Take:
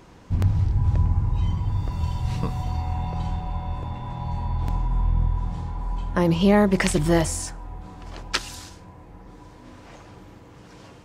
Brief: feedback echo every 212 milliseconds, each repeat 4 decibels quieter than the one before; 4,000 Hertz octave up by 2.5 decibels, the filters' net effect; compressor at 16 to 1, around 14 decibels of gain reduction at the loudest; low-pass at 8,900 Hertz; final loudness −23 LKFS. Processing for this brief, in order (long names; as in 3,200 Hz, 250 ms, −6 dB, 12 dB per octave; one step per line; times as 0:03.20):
low-pass filter 8,900 Hz
parametric band 4,000 Hz +3.5 dB
downward compressor 16 to 1, threshold −28 dBFS
repeating echo 212 ms, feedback 63%, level −4 dB
level +10 dB